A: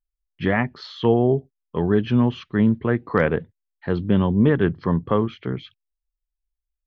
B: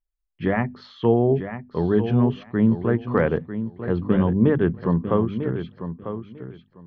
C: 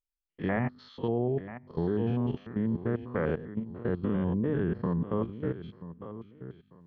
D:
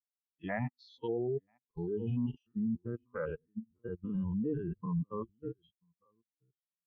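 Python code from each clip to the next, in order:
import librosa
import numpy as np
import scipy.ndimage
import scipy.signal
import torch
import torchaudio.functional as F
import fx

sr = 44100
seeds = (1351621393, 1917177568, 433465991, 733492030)

y1 = fx.high_shelf(x, sr, hz=2100.0, db=-11.0)
y1 = fx.hum_notches(y1, sr, base_hz=50, count=5)
y1 = fx.echo_feedback(y1, sr, ms=947, feedback_pct=18, wet_db=-10.0)
y2 = fx.spec_steps(y1, sr, hold_ms=100)
y2 = fx.level_steps(y2, sr, step_db=13)
y2 = F.gain(torch.from_numpy(y2), -2.0).numpy()
y3 = fx.bin_expand(y2, sr, power=3.0)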